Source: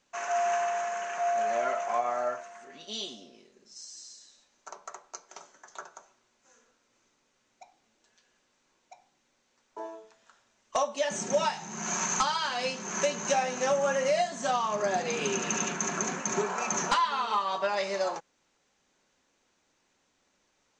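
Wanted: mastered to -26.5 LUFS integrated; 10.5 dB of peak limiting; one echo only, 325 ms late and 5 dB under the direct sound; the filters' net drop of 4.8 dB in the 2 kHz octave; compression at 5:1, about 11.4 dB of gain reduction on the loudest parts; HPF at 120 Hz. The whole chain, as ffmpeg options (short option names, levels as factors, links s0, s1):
-af "highpass=120,equalizer=f=2000:t=o:g=-6.5,acompressor=threshold=0.0158:ratio=5,alimiter=level_in=2.51:limit=0.0631:level=0:latency=1,volume=0.398,aecho=1:1:325:0.562,volume=4.73"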